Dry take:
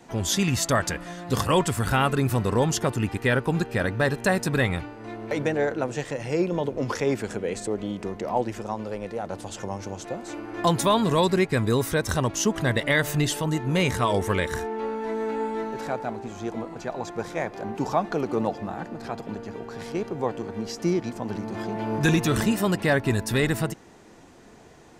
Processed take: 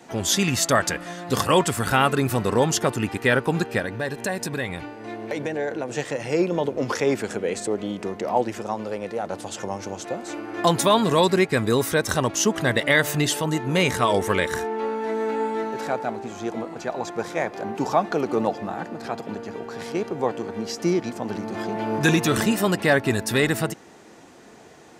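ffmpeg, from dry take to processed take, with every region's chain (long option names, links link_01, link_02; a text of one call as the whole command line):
ffmpeg -i in.wav -filter_complex "[0:a]asettb=1/sr,asplit=3[link_01][link_02][link_03];[link_01]atrim=end=3.794[link_04];[link_02]atrim=start=3.79:end=5.92,asetpts=PTS-STARTPTS,afade=type=in:duration=0.004:curve=qsin,afade=type=out:start_time=2.126:duration=0.004:curve=qsin,acompressor=threshold=-28dB:ratio=2.5:attack=3.2:release=140:knee=1:detection=peak,bandreject=frequency=1300:width=7.9[link_05];[link_03]atrim=start=5.916[link_06];[link_04][link_05]acrossfade=duration=0.004:curve1=hsin:curve2=qsin[link_07];[link_07][link_06]acrossfade=duration=0.004:curve1=qsin:curve2=hsin,highpass=frequency=210:poles=1,bandreject=frequency=1000:width=28,volume=4dB" out.wav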